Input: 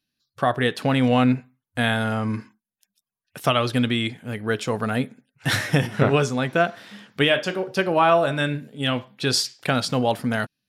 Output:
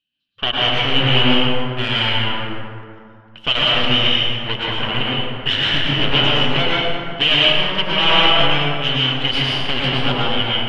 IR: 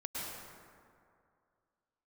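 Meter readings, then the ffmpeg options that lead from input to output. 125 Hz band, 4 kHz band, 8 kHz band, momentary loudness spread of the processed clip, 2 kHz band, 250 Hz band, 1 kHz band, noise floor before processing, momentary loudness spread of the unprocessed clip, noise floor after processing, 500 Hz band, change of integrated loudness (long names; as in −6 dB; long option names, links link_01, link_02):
+2.0 dB, +15.0 dB, below −10 dB, 9 LU, +6.0 dB, −0.5 dB, +2.5 dB, below −85 dBFS, 9 LU, −44 dBFS, −0.5 dB, +6.0 dB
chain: -filter_complex "[0:a]aeval=exprs='0.562*(cos(1*acos(clip(val(0)/0.562,-1,1)))-cos(1*PI/2))+0.2*(cos(8*acos(clip(val(0)/0.562,-1,1)))-cos(8*PI/2))':channel_layout=same,lowpass=frequency=3000:width_type=q:width=15[link_01];[1:a]atrim=start_sample=2205[link_02];[link_01][link_02]afir=irnorm=-1:irlink=0,volume=-6dB"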